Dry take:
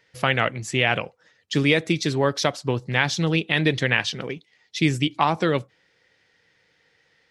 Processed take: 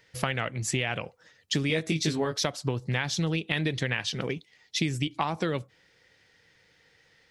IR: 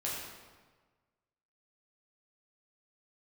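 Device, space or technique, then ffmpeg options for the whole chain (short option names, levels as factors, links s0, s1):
ASMR close-microphone chain: -filter_complex "[0:a]lowshelf=f=110:g=8,acompressor=threshold=0.0562:ratio=6,highshelf=f=6400:g=6.5,asettb=1/sr,asplit=3[s0][s1][s2];[s0]atrim=end=1.684[s3];[s1]atrim=start=1.68:end=2.38,asetpts=PTS-STARTPTS,afade=t=in:d=0.004:c=qsin,afade=t=out:st=0.696:d=0.004:c=qsin,asplit=2[s4][s5];[s5]adelay=19,volume=0.708[s6];[s4][s6]amix=inputs=2:normalize=0,atrim=end_sample=30870[s7];[s2]atrim=start=2.376[s8];[s3][s7]acrossfade=d=0.004:c1=hsin:c2=qsin[s9];[s9][s8]acrossfade=d=0.004:c1=qsin:c2=hsin"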